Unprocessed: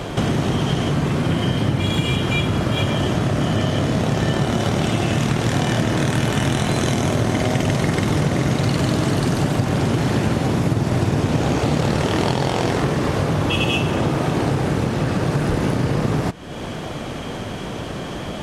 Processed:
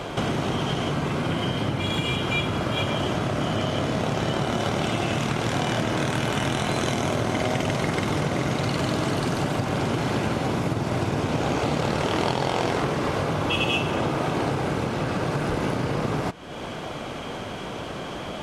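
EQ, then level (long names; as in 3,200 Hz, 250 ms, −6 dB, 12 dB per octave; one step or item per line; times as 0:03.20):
low-shelf EQ 370 Hz −9 dB
high-shelf EQ 4,000 Hz −7 dB
notch filter 1,800 Hz, Q 13
0.0 dB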